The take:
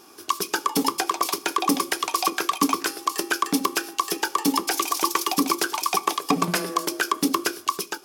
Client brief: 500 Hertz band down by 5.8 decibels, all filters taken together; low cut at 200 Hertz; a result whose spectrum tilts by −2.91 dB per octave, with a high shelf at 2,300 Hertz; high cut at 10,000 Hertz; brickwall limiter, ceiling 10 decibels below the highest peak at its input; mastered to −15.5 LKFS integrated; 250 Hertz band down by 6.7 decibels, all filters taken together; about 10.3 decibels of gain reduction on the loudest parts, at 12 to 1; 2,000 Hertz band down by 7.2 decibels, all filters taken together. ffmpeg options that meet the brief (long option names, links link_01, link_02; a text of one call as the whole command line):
ffmpeg -i in.wav -af "highpass=200,lowpass=10000,equalizer=frequency=250:width_type=o:gain=-5,equalizer=frequency=500:width_type=o:gain=-5,equalizer=frequency=2000:width_type=o:gain=-7.5,highshelf=frequency=2300:gain=-4.5,acompressor=threshold=-32dB:ratio=12,volume=24.5dB,alimiter=limit=-1dB:level=0:latency=1" out.wav